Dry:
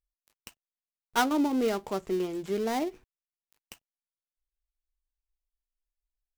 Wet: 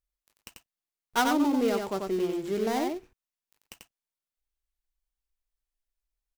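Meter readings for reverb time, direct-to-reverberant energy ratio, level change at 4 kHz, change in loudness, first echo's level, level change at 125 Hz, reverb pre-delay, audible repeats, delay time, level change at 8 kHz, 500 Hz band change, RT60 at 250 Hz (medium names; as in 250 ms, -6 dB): no reverb, no reverb, +1.5 dB, +1.5 dB, -4.0 dB, +1.0 dB, no reverb, 1, 91 ms, +1.5 dB, +1.5 dB, no reverb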